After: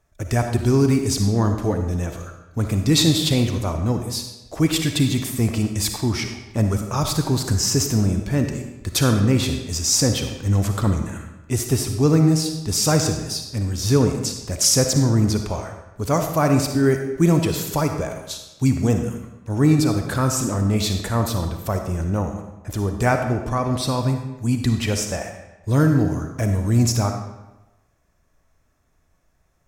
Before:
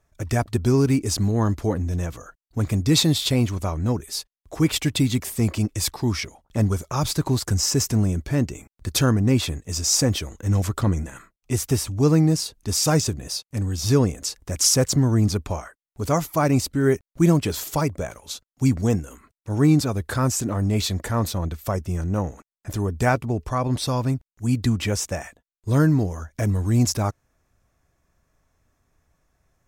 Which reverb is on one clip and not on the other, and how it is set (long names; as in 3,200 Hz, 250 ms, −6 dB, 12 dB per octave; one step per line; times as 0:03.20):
comb and all-pass reverb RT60 1 s, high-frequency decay 0.85×, pre-delay 15 ms, DRR 5 dB
level +1 dB